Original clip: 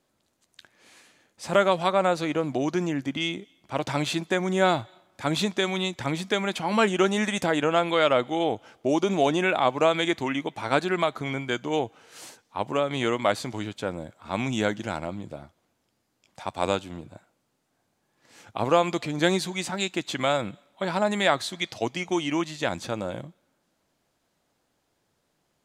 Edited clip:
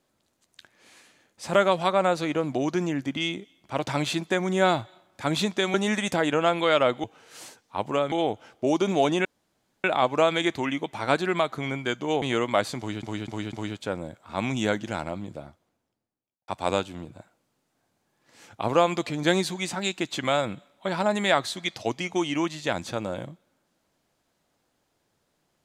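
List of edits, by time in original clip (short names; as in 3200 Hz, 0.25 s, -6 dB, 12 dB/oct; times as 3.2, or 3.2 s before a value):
5.74–7.04 cut
9.47 insert room tone 0.59 s
11.85–12.93 move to 8.34
13.49–13.74 loop, 4 plays
15.27–16.44 studio fade out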